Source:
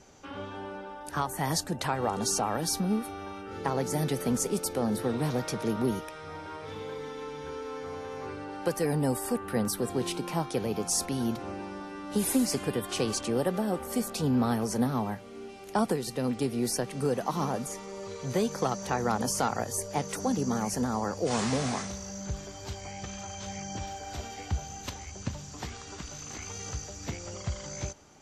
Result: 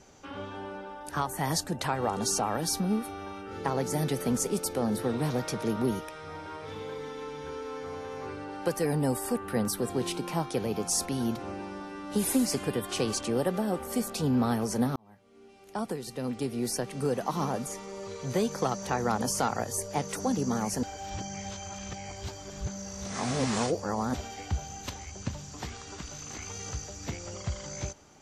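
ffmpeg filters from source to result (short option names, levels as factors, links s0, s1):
-filter_complex "[0:a]asplit=4[s0][s1][s2][s3];[s0]atrim=end=14.96,asetpts=PTS-STARTPTS,afade=t=out:st=14.956:d=0.004:c=hsin[s4];[s1]atrim=start=14.96:end=20.832,asetpts=PTS-STARTPTS,afade=t=in:d=2.78:c=qsin[s5];[s2]atrim=start=20.828:end=24.142,asetpts=PTS-STARTPTS,areverse[s6];[s3]atrim=start=24.138[s7];[s4][s5]concat=n=2:v=0:a=1[s8];[s8][s6]acrossfade=d=0.004:c1=hsin:c2=hsin[s9];[s9][s7]acrossfade=d=0.004:c1=hsin:c2=hsin"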